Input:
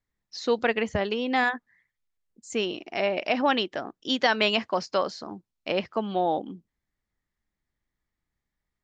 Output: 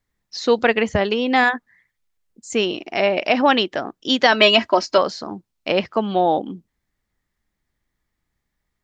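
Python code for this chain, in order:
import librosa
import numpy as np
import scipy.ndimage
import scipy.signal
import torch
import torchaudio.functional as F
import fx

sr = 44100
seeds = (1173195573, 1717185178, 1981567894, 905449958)

y = fx.comb(x, sr, ms=3.1, depth=0.83, at=(4.32, 4.98))
y = y * 10.0 ** (7.5 / 20.0)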